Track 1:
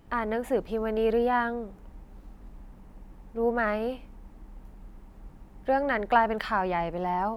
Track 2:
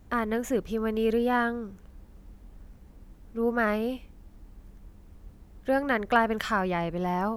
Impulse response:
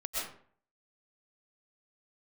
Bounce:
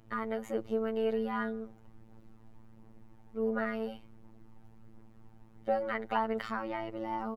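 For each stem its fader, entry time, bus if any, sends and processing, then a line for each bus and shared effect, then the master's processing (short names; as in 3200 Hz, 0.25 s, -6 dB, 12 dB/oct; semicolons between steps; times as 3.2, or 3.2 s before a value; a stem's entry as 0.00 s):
-5.5 dB, 0.00 s, no send, phaser 1.4 Hz, delay 1.4 ms, feedback 31%
-11.5 dB, 1.2 ms, polarity flipped, no send, limiter -21 dBFS, peak gain reduction 11.5 dB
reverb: off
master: high shelf 7600 Hz -5 dB; robotiser 111 Hz; bell 130 Hz +4 dB 0.44 oct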